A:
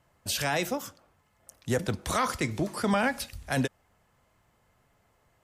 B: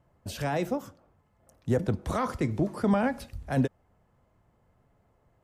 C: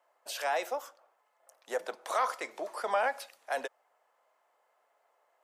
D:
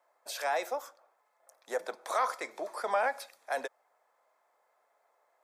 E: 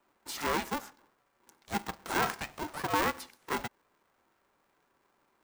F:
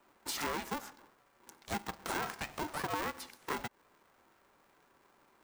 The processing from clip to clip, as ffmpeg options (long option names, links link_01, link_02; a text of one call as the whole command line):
ffmpeg -i in.wav -af "tiltshelf=frequency=1300:gain=8,volume=-4.5dB" out.wav
ffmpeg -i in.wav -af "highpass=frequency=590:width=0.5412,highpass=frequency=590:width=1.3066,volume=2dB" out.wav
ffmpeg -i in.wav -af "bandreject=frequency=2900:width=5.4" out.wav
ffmpeg -i in.wav -af "aeval=exprs='val(0)*sgn(sin(2*PI*300*n/s))':channel_layout=same" out.wav
ffmpeg -i in.wav -af "acompressor=threshold=-40dB:ratio=5,volume=5dB" out.wav